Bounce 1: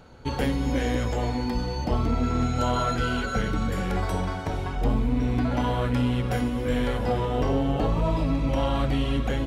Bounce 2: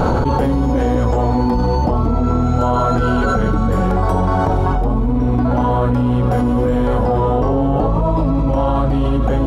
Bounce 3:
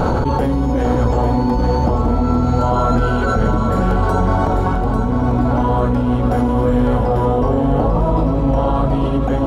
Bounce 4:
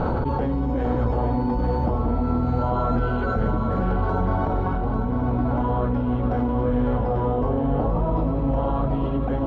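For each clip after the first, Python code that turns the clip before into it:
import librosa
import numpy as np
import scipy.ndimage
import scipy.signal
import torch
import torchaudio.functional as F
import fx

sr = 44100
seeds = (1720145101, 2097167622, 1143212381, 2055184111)

y1 = fx.high_shelf_res(x, sr, hz=1500.0, db=-10.0, q=1.5)
y1 = fx.env_flatten(y1, sr, amount_pct=100)
y1 = y1 * librosa.db_to_amplitude(4.5)
y2 = fx.echo_feedback(y1, sr, ms=845, feedback_pct=46, wet_db=-7.0)
y2 = y2 * librosa.db_to_amplitude(-1.0)
y3 = fx.air_absorb(y2, sr, metres=240.0)
y3 = y3 * librosa.db_to_amplitude(-6.5)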